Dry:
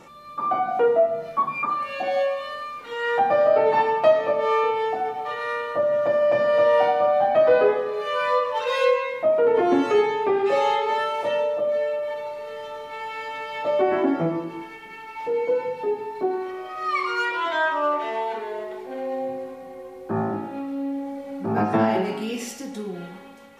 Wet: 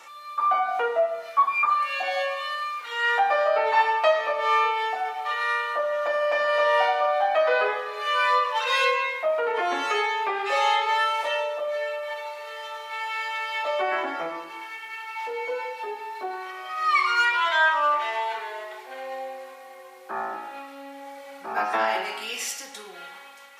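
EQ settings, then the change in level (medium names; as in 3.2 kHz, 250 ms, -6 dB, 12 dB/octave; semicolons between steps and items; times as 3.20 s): high-pass 1.1 kHz 12 dB/octave; +5.5 dB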